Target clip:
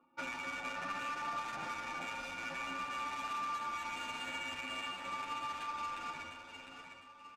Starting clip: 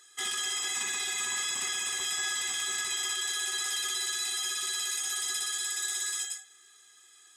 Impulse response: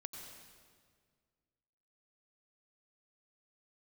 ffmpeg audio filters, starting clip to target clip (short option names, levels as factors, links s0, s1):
-filter_complex "[0:a]asplit=2[s0][s1];[s1]alimiter=level_in=2.37:limit=0.0631:level=0:latency=1:release=23,volume=0.422,volume=0.891[s2];[s0][s2]amix=inputs=2:normalize=0,highpass=f=150:w=0.5412,highpass=f=150:w=1.3066,equalizer=f=240:t=q:w=4:g=6,equalizer=f=470:t=q:w=4:g=3,equalizer=f=2800:t=q:w=4:g=-7,lowpass=f=4300:w=0.5412,lowpass=f=4300:w=1.3066,adynamicsmooth=sensitivity=7:basefreq=800,asetrate=31183,aresample=44100,atempo=1.41421,aecho=1:1:704|1408|2112|2816:0.398|0.147|0.0545|0.0202,acompressor=threshold=0.0141:ratio=6,asplit=2[s3][s4];[s4]adelay=9.3,afreqshift=0.47[s5];[s3][s5]amix=inputs=2:normalize=1,volume=1.41"